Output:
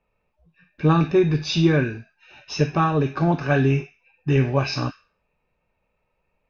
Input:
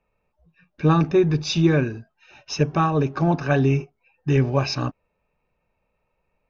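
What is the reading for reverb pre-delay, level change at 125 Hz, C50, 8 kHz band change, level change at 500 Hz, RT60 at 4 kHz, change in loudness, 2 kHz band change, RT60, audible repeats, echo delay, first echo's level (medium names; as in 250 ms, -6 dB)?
5 ms, 0.0 dB, 10.5 dB, no reading, 0.0 dB, 0.40 s, 0.0 dB, +2.0 dB, 0.40 s, no echo, no echo, no echo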